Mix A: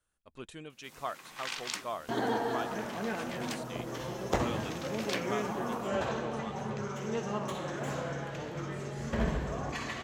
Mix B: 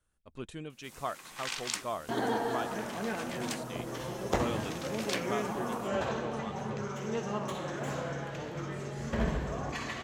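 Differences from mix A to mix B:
speech: add low-shelf EQ 350 Hz +7.5 dB
first sound: add parametric band 9,100 Hz +6 dB 1.1 octaves

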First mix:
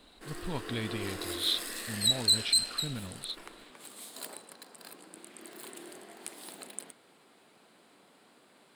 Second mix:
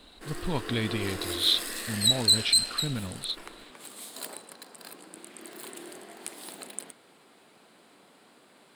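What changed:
speech +6.0 dB
background +3.5 dB

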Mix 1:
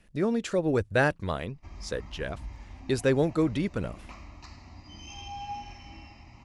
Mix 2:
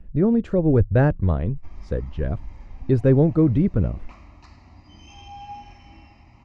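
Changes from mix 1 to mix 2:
speech: add spectral tilt −4.5 dB per octave
master: add high-shelf EQ 3,700 Hz −9 dB

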